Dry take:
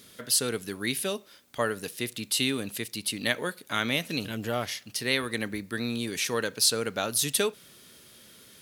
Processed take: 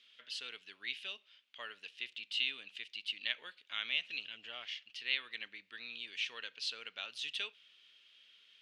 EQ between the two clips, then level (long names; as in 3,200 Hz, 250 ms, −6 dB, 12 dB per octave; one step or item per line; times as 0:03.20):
resonant band-pass 2,900 Hz, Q 4.2
high-frequency loss of the air 96 metres
+1.0 dB